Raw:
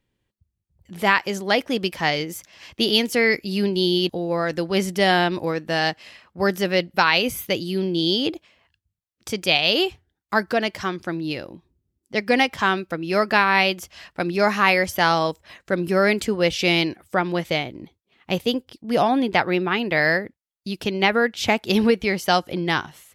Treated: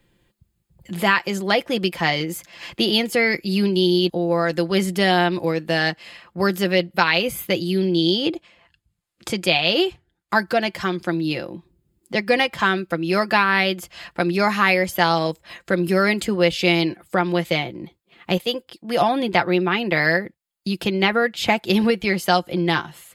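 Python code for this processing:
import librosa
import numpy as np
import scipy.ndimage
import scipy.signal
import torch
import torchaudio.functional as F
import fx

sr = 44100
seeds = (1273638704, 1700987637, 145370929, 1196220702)

y = fx.lowpass(x, sr, hz=12000.0, slope=12, at=(7.85, 10.35))
y = fx.low_shelf(y, sr, hz=300.0, db=-10.5, at=(18.37, 19.01))
y = fx.notch(y, sr, hz=5800.0, q=6.8)
y = y + 0.47 * np.pad(y, (int(5.8 * sr / 1000.0), 0))[:len(y)]
y = fx.band_squash(y, sr, depth_pct=40)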